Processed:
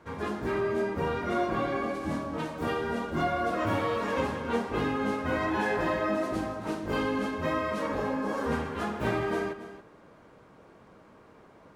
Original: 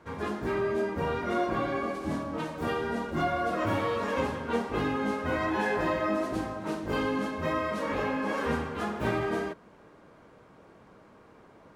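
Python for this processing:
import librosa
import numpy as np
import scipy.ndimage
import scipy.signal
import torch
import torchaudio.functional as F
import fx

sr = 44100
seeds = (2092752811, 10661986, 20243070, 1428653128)

y = fx.peak_eq(x, sr, hz=2500.0, db=-9.0, octaves=1.1, at=(7.87, 8.52))
y = y + 10.0 ** (-13.0 / 20.0) * np.pad(y, (int(278 * sr / 1000.0), 0))[:len(y)]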